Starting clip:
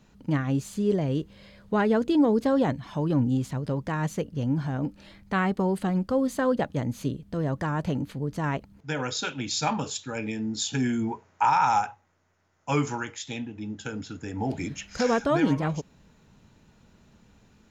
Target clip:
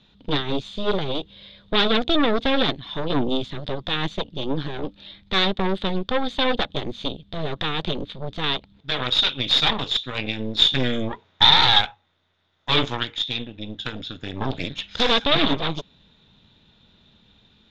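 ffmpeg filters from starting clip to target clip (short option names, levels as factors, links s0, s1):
-af "aeval=exprs='0.251*(cos(1*acos(clip(val(0)/0.251,-1,1)))-cos(1*PI/2))+0.0891*(cos(6*acos(clip(val(0)/0.251,-1,1)))-cos(6*PI/2))':c=same,lowpass=f=3600:t=q:w=13,volume=0.841"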